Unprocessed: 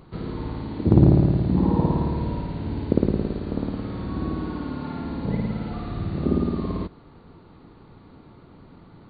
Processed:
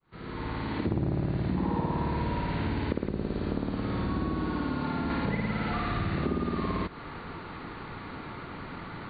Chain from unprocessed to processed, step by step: opening faded in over 1.48 s; bell 1900 Hz +13 dB 2.1 oct, from 3.09 s +6 dB, from 5.1 s +14.5 dB; compressor 5:1, threshold -32 dBFS, peak gain reduction 18.5 dB; soft clip -18.5 dBFS, distortion -29 dB; gain +5 dB

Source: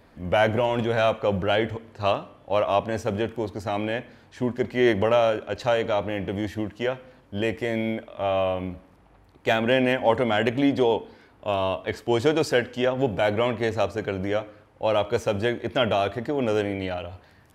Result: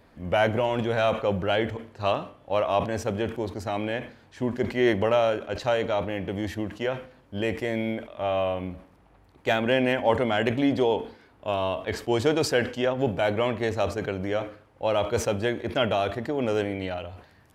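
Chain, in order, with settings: sustainer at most 130 dB/s; gain -2 dB

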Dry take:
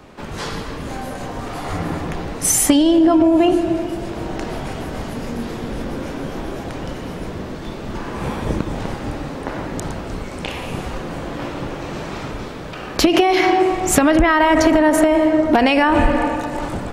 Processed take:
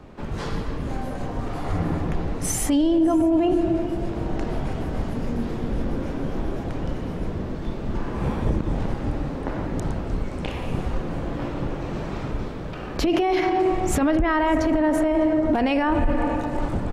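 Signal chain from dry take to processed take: tilt -2 dB/oct; limiter -8 dBFS, peak gain reduction 11.5 dB; echo 0.602 s -24 dB; gain -5 dB

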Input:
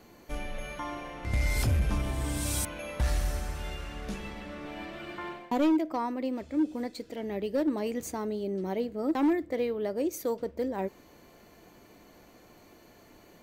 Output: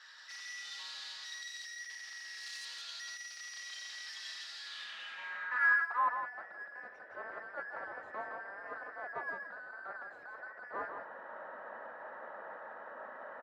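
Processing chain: band inversion scrambler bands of 2000 Hz; in parallel at +2.5 dB: compressor, threshold -37 dBFS, peak gain reduction 14.5 dB; on the sum: high shelf 7800 Hz -11 dB; notch 3500 Hz, Q 13; overdrive pedal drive 34 dB, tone 1900 Hz, clips at -14 dBFS; gate -20 dBFS, range -9 dB; on a send: echo 0.166 s -5 dB; on the sum: dynamic EQ 1500 Hz, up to -5 dB, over -37 dBFS, Q 2.2; band-pass sweep 4500 Hz -> 600 Hz, 4.56–6.56; vocal rider within 3 dB 0.5 s; three-band expander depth 100%

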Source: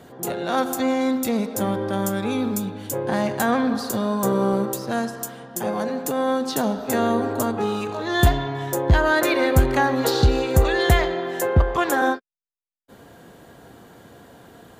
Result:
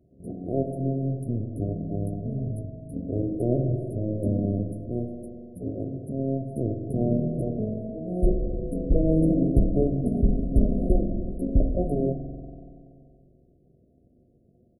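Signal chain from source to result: notches 60/120/180 Hz; power-law curve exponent 1.4; spring tank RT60 2.5 s, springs 45 ms, chirp 50 ms, DRR 4 dB; pitch shift -11.5 st; brick-wall FIR band-stop 720–9000 Hz

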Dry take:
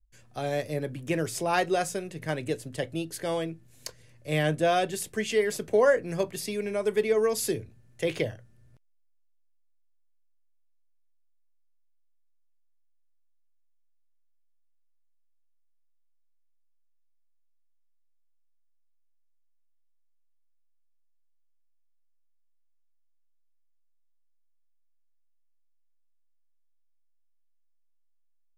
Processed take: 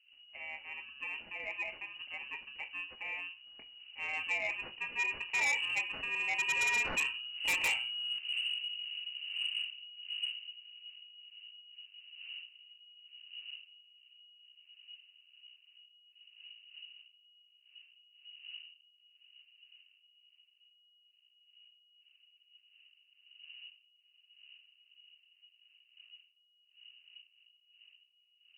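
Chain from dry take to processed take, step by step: FFT order left unsorted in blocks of 32 samples; wind noise 170 Hz -48 dBFS; Doppler pass-by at 8.46, 24 m/s, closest 16 m; on a send at -7.5 dB: reverb RT60 0.40 s, pre-delay 3 ms; on the sum: inverted band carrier 2900 Hz; in parallel at -11 dB: sine folder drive 15 dB, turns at -18 dBFS; on the sum: gain -2.5 dB

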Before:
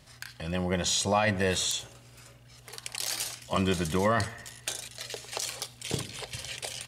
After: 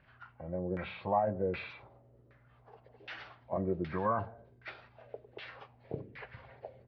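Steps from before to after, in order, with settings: nonlinear frequency compression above 1100 Hz 1.5:1; LFO low-pass saw down 1.3 Hz 360–2000 Hz; gain -9 dB

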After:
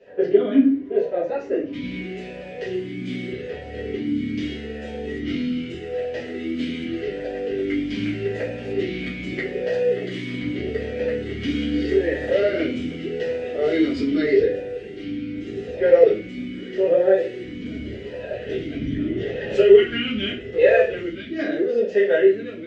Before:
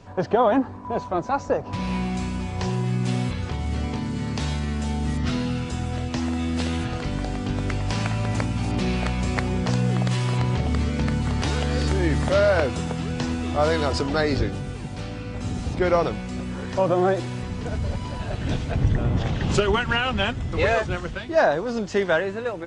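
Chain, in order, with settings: reverb RT60 0.45 s, pre-delay 4 ms, DRR -9 dB; vowel sweep e-i 0.82 Hz; gain +3 dB

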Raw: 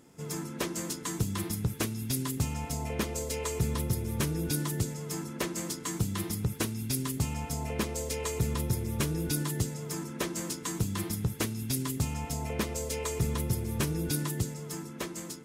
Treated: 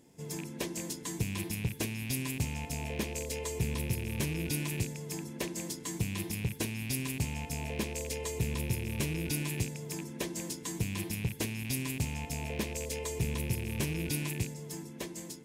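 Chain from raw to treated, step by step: rattling part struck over -34 dBFS, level -27 dBFS; bell 1300 Hz -13.5 dB 0.37 oct; gain -3 dB

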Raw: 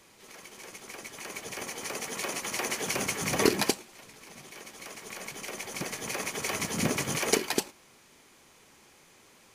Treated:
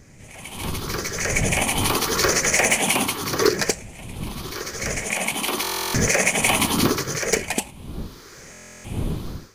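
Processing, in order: moving spectral ripple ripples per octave 0.55, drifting +0.83 Hz, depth 11 dB; wind noise 170 Hz -44 dBFS; AGC gain up to 14 dB; hard clip -9 dBFS, distortion -20 dB; stuck buffer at 5.62/8.52, samples 1024, times 13

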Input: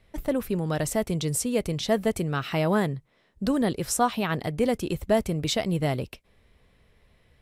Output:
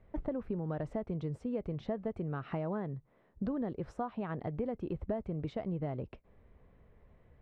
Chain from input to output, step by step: compressor 6:1, threshold -33 dBFS, peak gain reduction 15.5 dB; LPF 1200 Hz 12 dB/oct

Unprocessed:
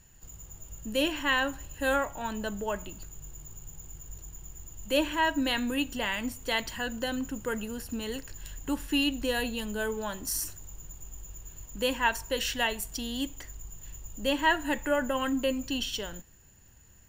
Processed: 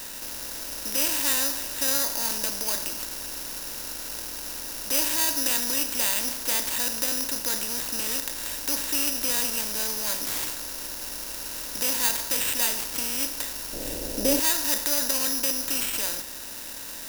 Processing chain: per-bin compression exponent 0.4; careless resampling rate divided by 8×, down none, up zero stuff; 13.73–14.4 resonant low shelf 730 Hz +10.5 dB, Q 1.5; gain -11.5 dB

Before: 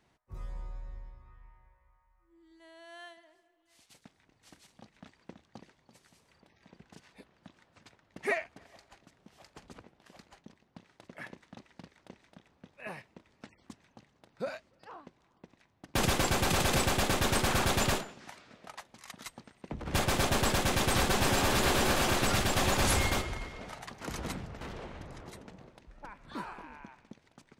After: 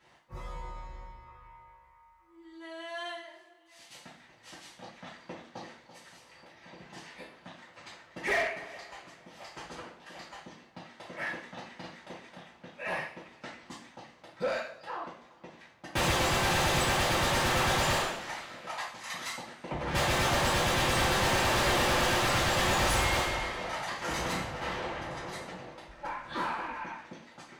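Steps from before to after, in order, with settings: two-slope reverb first 0.46 s, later 2.3 s, from -27 dB, DRR -9.5 dB; overdrive pedal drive 16 dB, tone 3700 Hz, clips at -16 dBFS; gain -7 dB

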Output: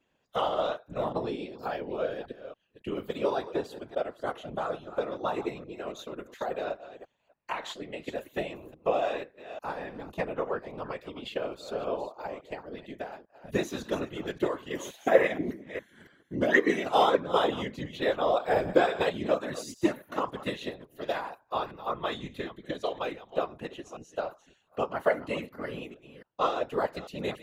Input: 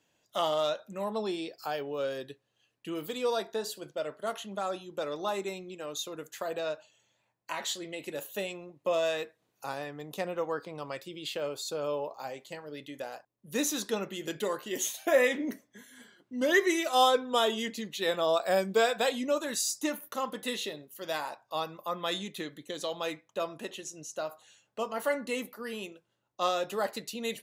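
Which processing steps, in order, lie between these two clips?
reverse delay 0.282 s, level -12 dB; tone controls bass +1 dB, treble -15 dB; transient shaper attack +4 dB, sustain -2 dB; whisperiser

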